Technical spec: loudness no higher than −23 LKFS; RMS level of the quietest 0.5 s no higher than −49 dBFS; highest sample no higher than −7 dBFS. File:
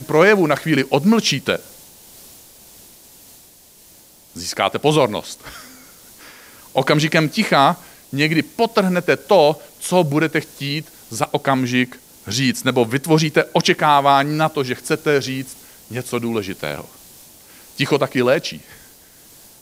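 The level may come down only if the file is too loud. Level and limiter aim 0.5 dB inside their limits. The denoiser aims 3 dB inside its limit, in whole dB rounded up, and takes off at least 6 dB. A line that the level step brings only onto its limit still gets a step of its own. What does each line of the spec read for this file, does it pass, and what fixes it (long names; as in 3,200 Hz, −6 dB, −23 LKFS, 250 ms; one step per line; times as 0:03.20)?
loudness −18.0 LKFS: out of spec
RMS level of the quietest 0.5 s −48 dBFS: out of spec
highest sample −1.5 dBFS: out of spec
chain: level −5.5 dB
brickwall limiter −7.5 dBFS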